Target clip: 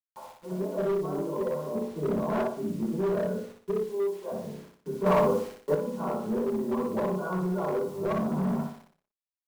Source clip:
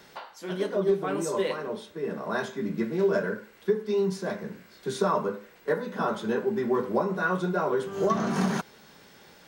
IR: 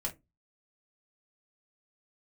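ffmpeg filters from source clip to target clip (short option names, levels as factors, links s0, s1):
-filter_complex "[0:a]asettb=1/sr,asplit=3[s0][s1][s2];[s0]atrim=end=3.824[s3];[s1]atrim=start=3.82:end=4.32,asetpts=PTS-STARTPTS,afade=t=in:d=0.004:c=qsin,afade=t=out:st=0.496:d=0.004:c=qsin,highpass=f=370:w=0.5412,highpass=f=370:w=1.3066[s4];[s2]atrim=start=4.316[s5];[s3][s4]acrossfade=d=0.004:c1=hsin:c2=qsin[s6];[s6][s5]acrossfade=d=0.004:c1=qsin:c2=hsin,agate=range=0.0224:threshold=0.00501:ratio=3:detection=peak,lowpass=f=1000:w=0.5412,lowpass=f=1000:w=1.3066[s7];[1:a]atrim=start_sample=2205,afade=t=out:st=0.22:d=0.01,atrim=end_sample=10143[s8];[s7][s8]afir=irnorm=-1:irlink=0,asettb=1/sr,asplit=3[s9][s10][s11];[s9]atrim=end=1.754[s12];[s10]atrim=start=1.75:end=2.42,asetpts=PTS-STARTPTS,afade=t=in:d=0.004:c=qsin,afade=t=out:st=0.666:d=0.004:c=qsin,acontrast=74[s13];[s11]atrim=start=2.416[s14];[s12][s13]acrossfade=d=0.004:c1=hsin:c2=qsin[s15];[s15][s14]acrossfade=d=0.004:c1=qsin:c2=hsin,acrusher=bits=7:mix=0:aa=0.000001,aecho=1:1:60|120|180|240|300:0.708|0.29|0.119|0.0488|0.02,volume=7.94,asoftclip=hard,volume=0.126,asettb=1/sr,asplit=3[s16][s17][s18];[s16]atrim=end=5.064[s19];[s17]atrim=start=5.06:end=5.75,asetpts=PTS-STARTPTS,afade=t=in:d=0.004:c=qsin,afade=t=out:st=0.686:d=0.004:c=qsin,acontrast=63[s20];[s18]atrim=start=5.746[s21];[s19][s20]acrossfade=d=0.004:c1=hsin:c2=qsin[s22];[s22][s21]acrossfade=d=0.004:c1=qsin:c2=hsin,volume=0.531"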